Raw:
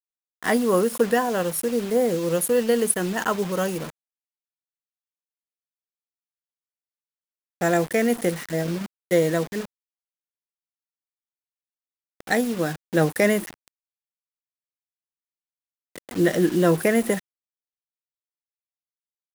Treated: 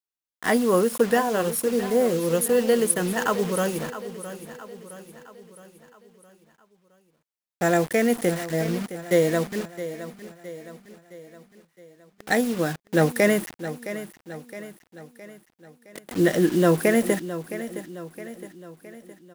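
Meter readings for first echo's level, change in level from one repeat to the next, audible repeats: -13.0 dB, -6.0 dB, 4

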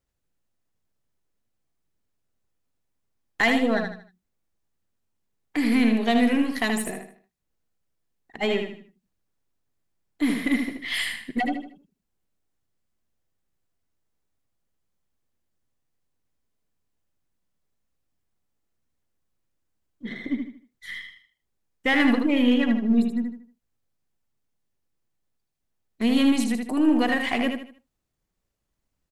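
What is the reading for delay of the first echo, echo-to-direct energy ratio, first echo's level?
77 ms, -5.0 dB, -5.5 dB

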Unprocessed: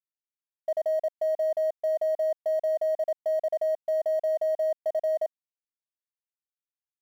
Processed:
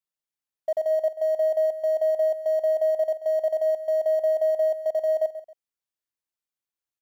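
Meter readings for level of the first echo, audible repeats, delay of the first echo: -13.0 dB, 2, 0.135 s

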